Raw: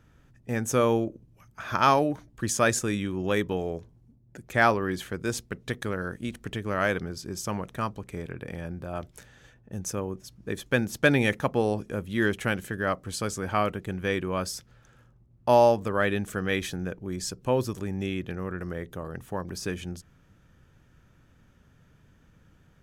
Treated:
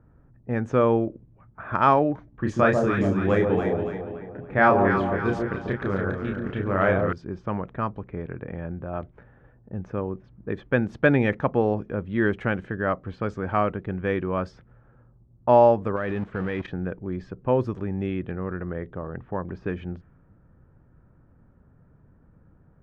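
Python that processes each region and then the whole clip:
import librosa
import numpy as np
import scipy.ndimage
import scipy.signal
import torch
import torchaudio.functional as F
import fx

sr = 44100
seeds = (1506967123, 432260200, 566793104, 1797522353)

y = fx.chain(x, sr, fx.doubler(ms=31.0, db=-4),
    fx.echo_alternate(ms=141, hz=920.0, feedback_pct=69, wet_db=-3), at=(2.29, 7.13))
y = fx.chain(y, sr, fx.zero_step(step_db=-31.0),
    fx.level_steps(step_db=15), at=(15.96, 16.68))
y = scipy.signal.sosfilt(scipy.signal.butter(2, 1700.0, 'lowpass', fs=sr, output='sos'), y)
y = fx.env_lowpass(y, sr, base_hz=1100.0, full_db=-24.0)
y = y * 10.0 ** (3.0 / 20.0)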